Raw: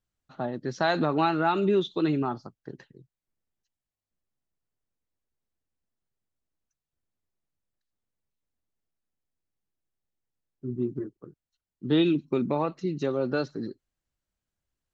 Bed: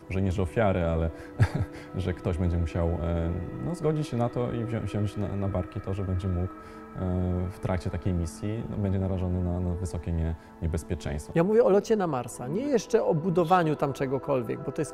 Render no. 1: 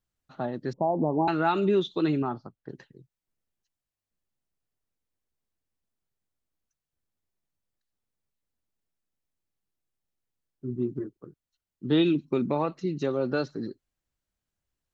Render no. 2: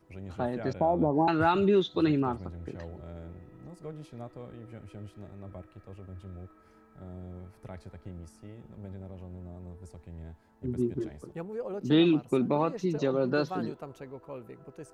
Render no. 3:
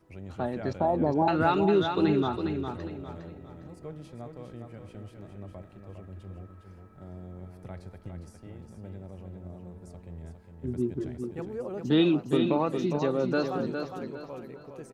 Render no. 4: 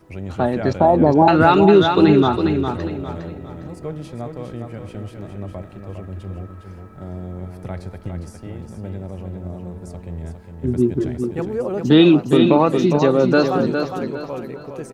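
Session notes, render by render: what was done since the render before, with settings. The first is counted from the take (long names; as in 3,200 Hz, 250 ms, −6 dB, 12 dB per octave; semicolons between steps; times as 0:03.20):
0:00.73–0:01.28: Butterworth low-pass 1,000 Hz 96 dB per octave; 0:02.22–0:02.69: high-frequency loss of the air 240 metres
mix in bed −15.5 dB
repeating echo 408 ms, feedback 34%, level −6.5 dB
level +12 dB; brickwall limiter −2 dBFS, peak gain reduction 2 dB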